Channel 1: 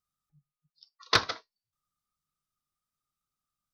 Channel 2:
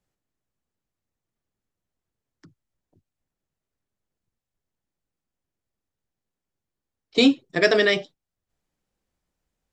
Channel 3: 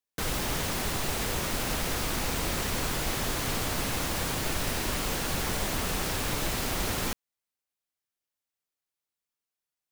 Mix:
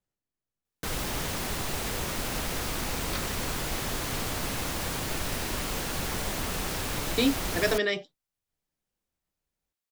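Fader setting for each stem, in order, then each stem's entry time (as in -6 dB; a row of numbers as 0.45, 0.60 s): -16.0, -8.0, -1.5 dB; 2.00, 0.00, 0.65 s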